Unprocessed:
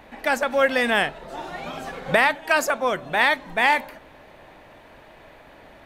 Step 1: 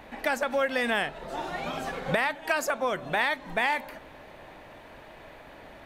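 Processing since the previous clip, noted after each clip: compressor 3:1, threshold -25 dBFS, peak gain reduction 9 dB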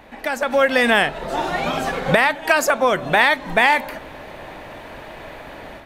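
AGC gain up to 9.5 dB; gain +2 dB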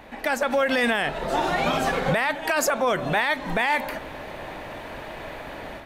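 limiter -13.5 dBFS, peak gain reduction 11.5 dB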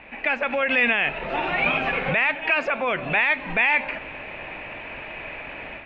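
ladder low-pass 2700 Hz, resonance 75%; gain +8.5 dB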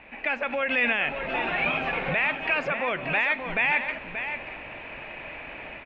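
echo 0.581 s -8.5 dB; gain -4 dB

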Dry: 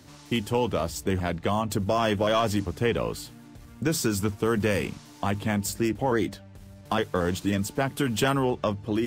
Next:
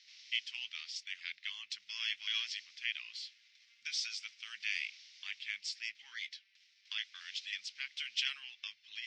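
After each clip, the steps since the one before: elliptic band-pass 2100–5500 Hz, stop band 60 dB; gain -1 dB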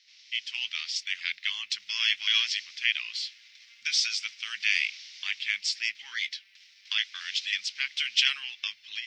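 AGC gain up to 11.5 dB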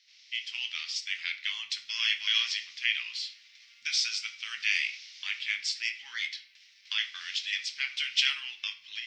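shoebox room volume 51 m³, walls mixed, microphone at 0.32 m; gain -3 dB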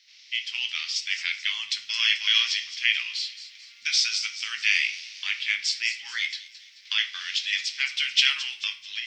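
thin delay 0.218 s, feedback 45%, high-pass 5200 Hz, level -8 dB; gain +5.5 dB

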